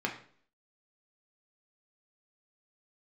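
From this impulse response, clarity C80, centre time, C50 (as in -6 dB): 13.0 dB, 18 ms, 9.5 dB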